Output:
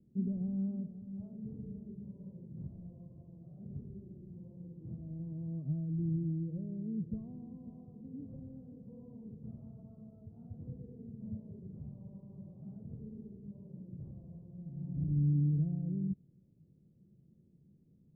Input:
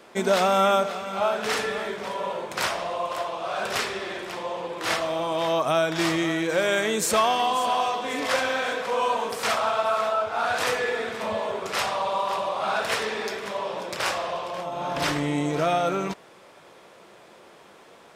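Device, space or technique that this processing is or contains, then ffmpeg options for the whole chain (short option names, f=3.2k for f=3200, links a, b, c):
the neighbour's flat through the wall: -af "lowpass=f=190:w=0.5412,lowpass=f=190:w=1.3066,equalizer=f=140:t=o:w=0.43:g=4,volume=1dB"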